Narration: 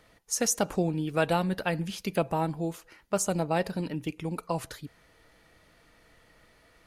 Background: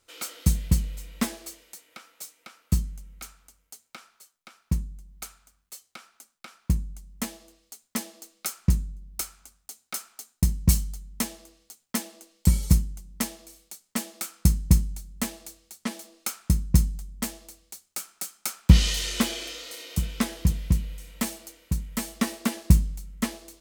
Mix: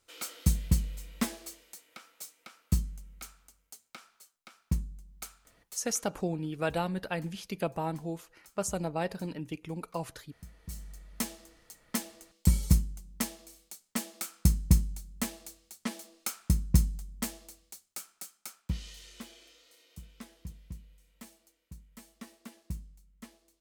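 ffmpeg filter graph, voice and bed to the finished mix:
-filter_complex "[0:a]adelay=5450,volume=0.562[s0];[1:a]volume=8.91,afade=t=out:st=5.72:d=0.41:silence=0.0707946,afade=t=in:st=10.67:d=0.63:silence=0.0707946,afade=t=out:st=17.52:d=1.25:silence=0.133352[s1];[s0][s1]amix=inputs=2:normalize=0"

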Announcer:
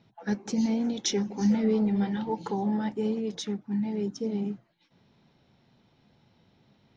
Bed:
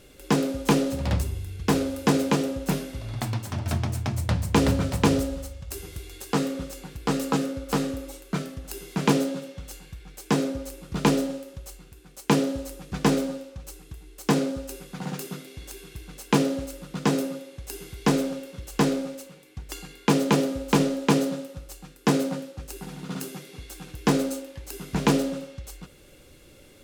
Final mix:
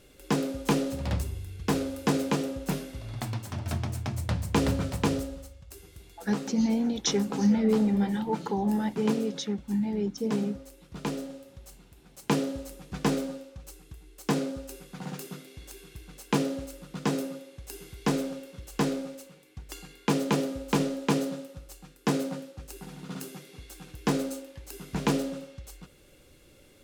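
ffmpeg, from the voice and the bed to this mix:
-filter_complex "[0:a]adelay=6000,volume=1.12[s0];[1:a]volume=1.26,afade=t=out:st=4.83:d=0.86:silence=0.446684,afade=t=in:st=11.09:d=1.15:silence=0.473151[s1];[s0][s1]amix=inputs=2:normalize=0"

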